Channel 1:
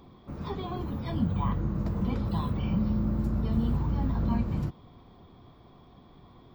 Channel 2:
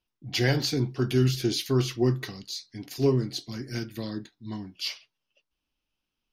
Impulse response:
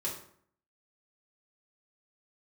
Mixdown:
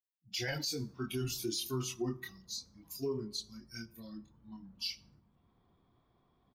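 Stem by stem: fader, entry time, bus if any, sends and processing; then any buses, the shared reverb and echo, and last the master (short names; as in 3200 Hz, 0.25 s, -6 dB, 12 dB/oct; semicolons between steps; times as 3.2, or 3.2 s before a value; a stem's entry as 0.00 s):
-19.0 dB, 0.50 s, no send, echo send -15 dB, compressor 3:1, threshold -39 dBFS, peak gain reduction 13 dB; auto duck -8 dB, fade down 1.80 s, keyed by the second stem
-3.0 dB, 0.00 s, send -16.5 dB, no echo send, per-bin expansion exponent 2; tone controls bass -2 dB, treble +11 dB; chorus voices 4, 0.4 Hz, delay 25 ms, depth 3 ms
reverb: on, RT60 0.60 s, pre-delay 3 ms
echo: feedback echo 0.212 s, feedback 58%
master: bell 1600 Hz +4 dB 1.3 oct; limiter -27 dBFS, peak gain reduction 10 dB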